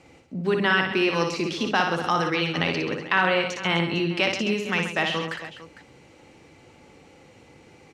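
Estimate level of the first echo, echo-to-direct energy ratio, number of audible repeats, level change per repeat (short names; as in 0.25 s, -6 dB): -5.0 dB, -3.5 dB, 4, no steady repeat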